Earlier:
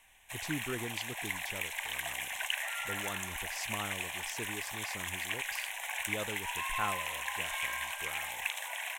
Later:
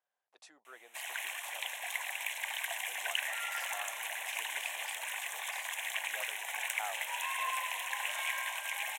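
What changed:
speech: add ladder high-pass 650 Hz, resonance 65%; background: entry +0.65 s

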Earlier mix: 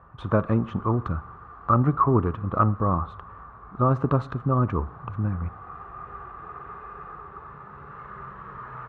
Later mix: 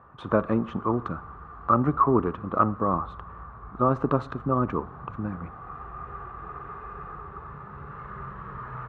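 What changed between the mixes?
speech: add high-pass 250 Hz 12 dB/octave; master: add bass shelf 210 Hz +7 dB

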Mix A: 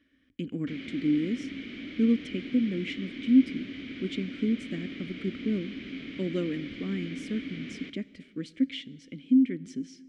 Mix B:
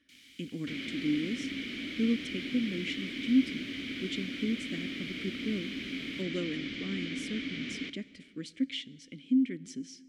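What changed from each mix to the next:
speech -5.0 dB; first sound: unmuted; master: add treble shelf 2.9 kHz +11.5 dB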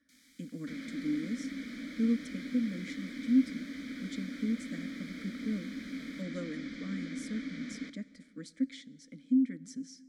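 master: add static phaser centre 560 Hz, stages 8

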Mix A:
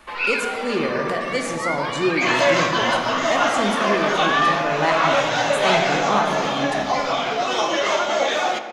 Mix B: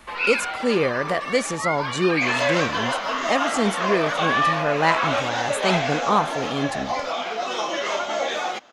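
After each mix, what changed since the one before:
speech +5.5 dB; second sound -3.5 dB; reverb: off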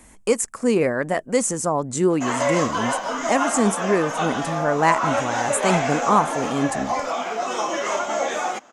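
first sound: muted; master: add graphic EQ 250/1000/4000/8000 Hz +4/+3/-10/+12 dB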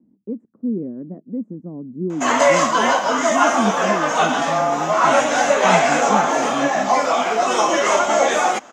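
speech: add Butterworth band-pass 230 Hz, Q 1.5; background +7.5 dB

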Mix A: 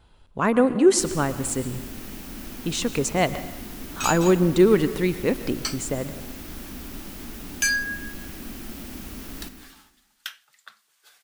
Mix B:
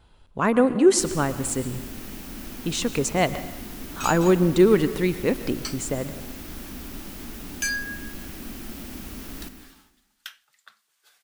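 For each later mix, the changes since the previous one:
second sound -4.5 dB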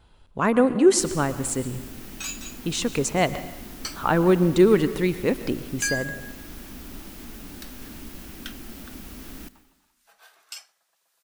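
first sound: send -11.5 dB; second sound: entry -1.80 s

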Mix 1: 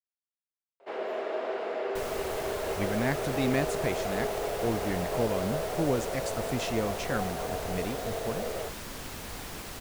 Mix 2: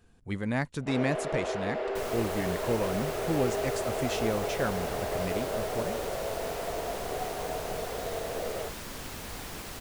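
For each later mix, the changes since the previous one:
speech: entry -2.50 s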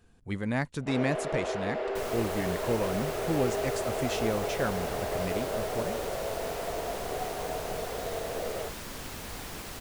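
no change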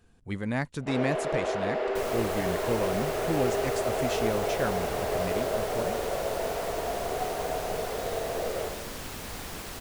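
reverb: on, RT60 1.1 s

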